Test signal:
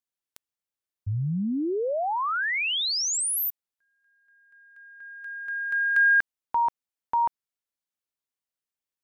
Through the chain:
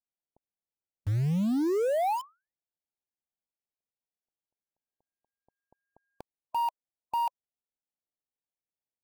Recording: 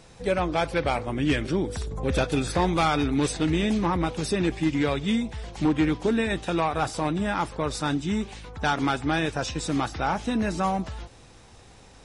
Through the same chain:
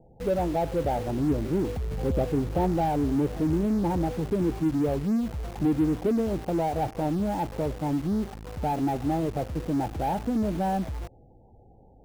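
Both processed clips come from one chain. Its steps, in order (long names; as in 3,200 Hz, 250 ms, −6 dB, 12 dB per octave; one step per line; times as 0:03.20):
Butterworth low-pass 900 Hz 72 dB per octave
gate on every frequency bin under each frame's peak −20 dB strong
in parallel at −9 dB: log-companded quantiser 2 bits
on the sum: level −2.5 dB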